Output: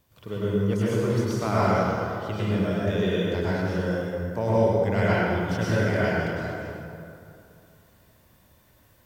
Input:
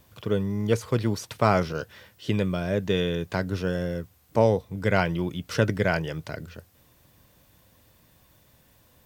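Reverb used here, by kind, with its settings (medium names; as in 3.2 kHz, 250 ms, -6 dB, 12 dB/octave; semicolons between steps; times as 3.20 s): plate-style reverb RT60 2.6 s, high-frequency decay 0.5×, pre-delay 90 ms, DRR -9.5 dB; trim -9 dB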